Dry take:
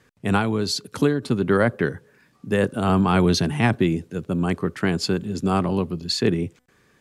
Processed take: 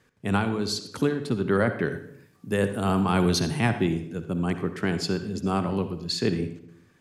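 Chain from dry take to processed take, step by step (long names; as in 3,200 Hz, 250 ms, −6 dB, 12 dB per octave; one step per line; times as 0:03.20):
0:01.91–0:03.69: high-shelf EQ 8,900 Hz +11 dB
on a send: convolution reverb RT60 0.65 s, pre-delay 52 ms, DRR 9 dB
on the sum: level −4.5 dB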